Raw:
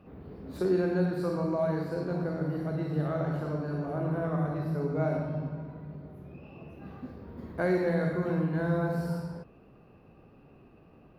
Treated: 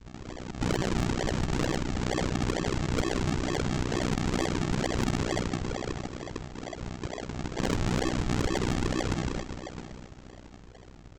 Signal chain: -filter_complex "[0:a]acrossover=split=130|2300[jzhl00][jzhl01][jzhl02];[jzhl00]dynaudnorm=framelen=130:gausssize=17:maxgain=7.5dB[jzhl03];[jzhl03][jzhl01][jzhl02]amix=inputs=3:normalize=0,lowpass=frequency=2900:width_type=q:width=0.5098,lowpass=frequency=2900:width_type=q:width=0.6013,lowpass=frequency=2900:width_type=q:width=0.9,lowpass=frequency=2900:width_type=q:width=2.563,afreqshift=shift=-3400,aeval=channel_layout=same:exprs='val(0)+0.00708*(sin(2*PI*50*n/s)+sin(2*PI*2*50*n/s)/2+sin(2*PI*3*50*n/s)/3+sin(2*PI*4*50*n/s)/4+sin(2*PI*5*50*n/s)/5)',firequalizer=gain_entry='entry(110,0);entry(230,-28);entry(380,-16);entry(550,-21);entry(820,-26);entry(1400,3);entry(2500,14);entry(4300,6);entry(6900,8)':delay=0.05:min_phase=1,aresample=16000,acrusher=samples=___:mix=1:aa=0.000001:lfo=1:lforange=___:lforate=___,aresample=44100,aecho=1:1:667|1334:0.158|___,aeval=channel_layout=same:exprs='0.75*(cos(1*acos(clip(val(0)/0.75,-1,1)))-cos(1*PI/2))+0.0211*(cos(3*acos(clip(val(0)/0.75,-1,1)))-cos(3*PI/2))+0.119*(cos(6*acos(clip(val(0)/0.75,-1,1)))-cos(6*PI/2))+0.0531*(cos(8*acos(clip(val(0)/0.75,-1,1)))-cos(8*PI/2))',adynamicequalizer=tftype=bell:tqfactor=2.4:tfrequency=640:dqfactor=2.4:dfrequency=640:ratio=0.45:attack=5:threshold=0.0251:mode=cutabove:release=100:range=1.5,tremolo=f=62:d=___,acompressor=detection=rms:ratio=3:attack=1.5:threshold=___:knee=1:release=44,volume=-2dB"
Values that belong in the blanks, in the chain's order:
22, 22, 2.2, 0.0285, 0.947, -22dB